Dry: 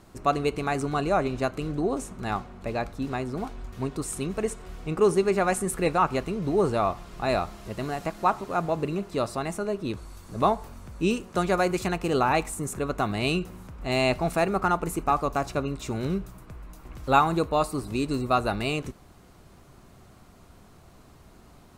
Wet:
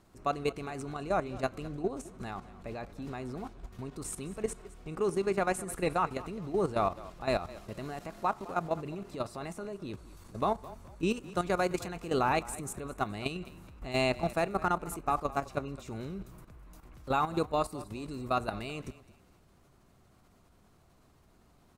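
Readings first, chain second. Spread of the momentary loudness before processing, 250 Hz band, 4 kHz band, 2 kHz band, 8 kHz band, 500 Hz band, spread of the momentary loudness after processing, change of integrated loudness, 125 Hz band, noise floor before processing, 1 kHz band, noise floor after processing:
11 LU, -8.0 dB, -7.5 dB, -7.0 dB, -7.0 dB, -7.0 dB, 13 LU, -7.0 dB, -8.0 dB, -53 dBFS, -7.0 dB, -63 dBFS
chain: level held to a coarse grid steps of 12 dB; frequency-shifting echo 210 ms, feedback 31%, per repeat -30 Hz, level -18 dB; trim -3 dB

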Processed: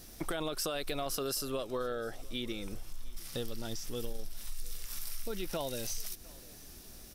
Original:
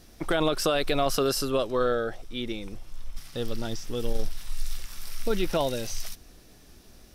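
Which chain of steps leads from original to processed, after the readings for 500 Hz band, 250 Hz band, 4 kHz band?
-10.5 dB, -9.5 dB, -7.0 dB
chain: treble shelf 6.9 kHz +12 dB; compression 4:1, threshold -33 dBFS, peak gain reduction 13 dB; on a send: delay 704 ms -23.5 dB; on the sum: trim -1 dB

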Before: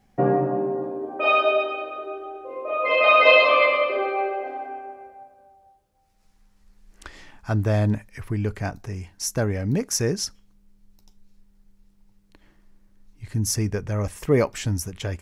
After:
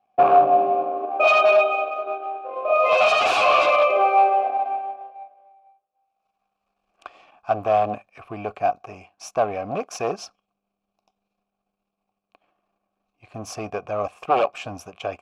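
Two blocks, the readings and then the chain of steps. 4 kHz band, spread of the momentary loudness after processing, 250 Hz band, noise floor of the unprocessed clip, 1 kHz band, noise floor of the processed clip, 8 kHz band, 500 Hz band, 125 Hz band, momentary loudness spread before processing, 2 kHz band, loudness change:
-2.0 dB, 19 LU, -8.5 dB, -61 dBFS, +7.0 dB, -81 dBFS, -10.5 dB, +2.0 dB, -16.0 dB, 18 LU, -2.0 dB, +2.0 dB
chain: sine folder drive 15 dB, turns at -2 dBFS; power-law waveshaper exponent 1.4; vowel filter a

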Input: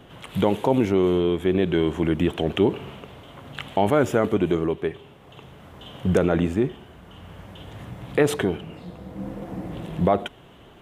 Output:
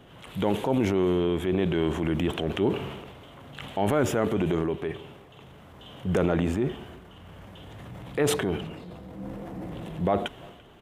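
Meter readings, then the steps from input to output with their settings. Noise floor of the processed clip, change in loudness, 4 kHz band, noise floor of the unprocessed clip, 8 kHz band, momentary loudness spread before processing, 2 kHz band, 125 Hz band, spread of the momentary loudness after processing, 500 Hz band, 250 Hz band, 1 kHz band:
-50 dBFS, -4.0 dB, -2.0 dB, -49 dBFS, +2.0 dB, 19 LU, -3.5 dB, -3.0 dB, 21 LU, -4.5 dB, -4.0 dB, -4.0 dB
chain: transient shaper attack -4 dB, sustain +7 dB; speakerphone echo 340 ms, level -23 dB; trim -4 dB

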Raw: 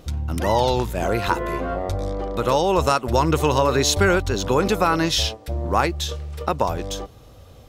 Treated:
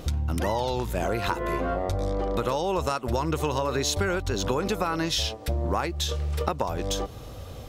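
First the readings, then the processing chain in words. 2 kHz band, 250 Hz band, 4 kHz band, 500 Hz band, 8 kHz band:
-7.0 dB, -6.0 dB, -5.5 dB, -6.5 dB, -5.5 dB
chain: compression 6:1, threshold -30 dBFS, peak gain reduction 16 dB; trim +6 dB

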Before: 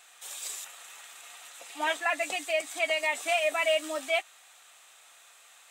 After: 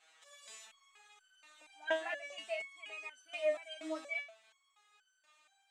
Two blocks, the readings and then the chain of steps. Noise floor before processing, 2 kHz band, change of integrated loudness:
-56 dBFS, -12.0 dB, -11.0 dB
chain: distance through air 95 m; resonator arpeggio 4.2 Hz 160–1500 Hz; trim +4.5 dB

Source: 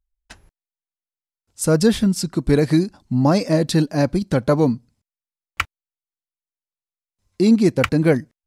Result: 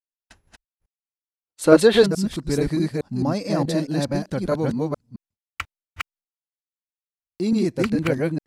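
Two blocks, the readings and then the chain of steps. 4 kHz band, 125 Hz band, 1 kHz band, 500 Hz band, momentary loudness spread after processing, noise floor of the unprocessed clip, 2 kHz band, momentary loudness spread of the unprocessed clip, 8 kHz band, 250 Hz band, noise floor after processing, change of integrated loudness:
-1.0 dB, -5.5 dB, -3.0 dB, 0.0 dB, 20 LU, under -85 dBFS, -1.5 dB, 11 LU, -5.0 dB, -4.0 dB, under -85 dBFS, -2.5 dB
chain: chunks repeated in reverse 215 ms, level 0 dB; expander -43 dBFS; time-frequency box 0.97–2.07 s, 290–4600 Hz +12 dB; trim -8 dB

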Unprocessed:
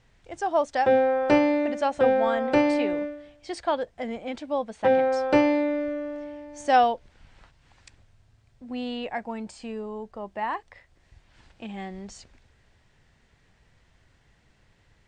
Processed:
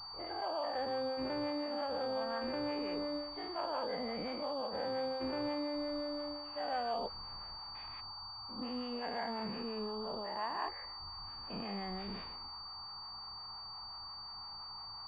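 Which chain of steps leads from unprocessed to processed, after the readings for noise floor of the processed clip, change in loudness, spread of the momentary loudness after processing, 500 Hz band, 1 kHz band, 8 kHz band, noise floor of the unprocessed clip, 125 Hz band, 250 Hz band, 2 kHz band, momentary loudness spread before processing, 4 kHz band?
-48 dBFS, -14.5 dB, 8 LU, -14.0 dB, -13.0 dB, under -20 dB, -63 dBFS, -8.0 dB, -13.5 dB, -14.0 dB, 17 LU, +2.0 dB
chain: every event in the spectrogram widened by 240 ms; reverse; compression 5:1, threshold -29 dBFS, peak gain reduction 15.5 dB; reverse; harmonic tremolo 5.7 Hz, depth 50%, crossover 480 Hz; band noise 770–1300 Hz -49 dBFS; class-D stage that switches slowly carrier 4.6 kHz; trim -5 dB

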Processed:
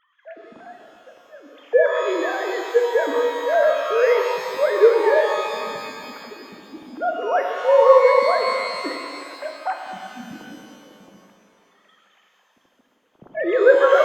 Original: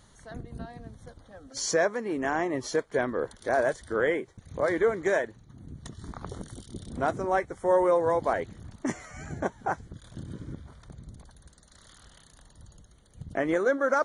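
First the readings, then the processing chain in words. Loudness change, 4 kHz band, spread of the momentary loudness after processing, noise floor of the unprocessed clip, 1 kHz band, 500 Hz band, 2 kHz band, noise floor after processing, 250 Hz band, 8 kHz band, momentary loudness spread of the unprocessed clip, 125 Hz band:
+9.0 dB, +10.0 dB, 20 LU, -57 dBFS, +8.5 dB, +10.5 dB, +7.0 dB, -63 dBFS, 0.0 dB, no reading, 19 LU, under -10 dB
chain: formants replaced by sine waves; pitch-shifted reverb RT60 2.3 s, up +12 st, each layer -8 dB, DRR 2.5 dB; trim +7 dB

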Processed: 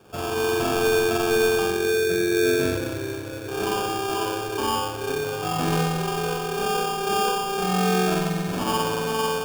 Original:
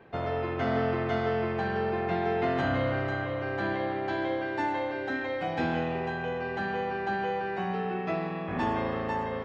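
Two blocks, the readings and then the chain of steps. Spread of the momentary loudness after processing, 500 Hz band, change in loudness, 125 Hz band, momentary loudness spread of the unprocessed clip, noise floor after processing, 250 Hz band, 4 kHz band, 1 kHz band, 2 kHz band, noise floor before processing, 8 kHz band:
7 LU, +7.0 dB, +6.5 dB, +4.5 dB, 4 LU, -32 dBFS, +5.0 dB, +15.0 dB, +5.0 dB, +4.5 dB, -34 dBFS, no reading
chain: spectral selection erased 1.63–3.48 s, 680–2100 Hz; spring tank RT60 1.1 s, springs 43 ms, chirp 60 ms, DRR -4 dB; sample-rate reducer 2 kHz, jitter 0%

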